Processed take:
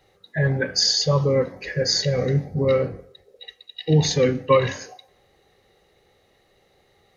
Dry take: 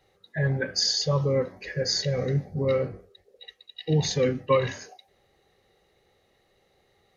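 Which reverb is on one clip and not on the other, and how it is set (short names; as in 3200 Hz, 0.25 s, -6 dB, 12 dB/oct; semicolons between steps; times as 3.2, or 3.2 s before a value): FDN reverb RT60 0.86 s, low-frequency decay 0.75×, high-frequency decay 0.7×, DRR 17.5 dB; gain +5 dB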